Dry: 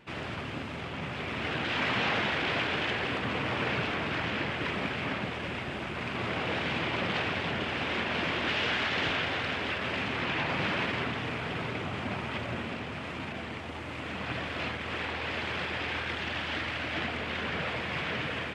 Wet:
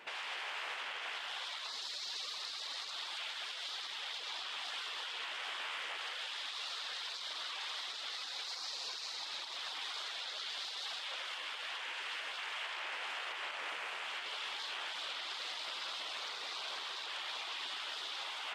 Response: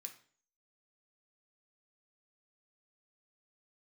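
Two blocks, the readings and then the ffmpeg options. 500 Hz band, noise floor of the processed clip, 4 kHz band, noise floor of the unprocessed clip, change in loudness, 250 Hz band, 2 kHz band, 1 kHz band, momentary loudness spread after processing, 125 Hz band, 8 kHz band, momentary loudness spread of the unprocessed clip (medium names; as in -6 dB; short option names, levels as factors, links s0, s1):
-19.0 dB, -44 dBFS, -2.5 dB, -38 dBFS, -8.5 dB, under -30 dB, -11.0 dB, -10.5 dB, 1 LU, under -40 dB, +4.0 dB, 8 LU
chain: -af "afftfilt=real='re*lt(hypot(re,im),0.0251)':imag='im*lt(hypot(re,im),0.0251)':win_size=1024:overlap=0.75,highpass=600,alimiter=level_in=4.22:limit=0.0631:level=0:latency=1:release=142,volume=0.237,volume=1.78"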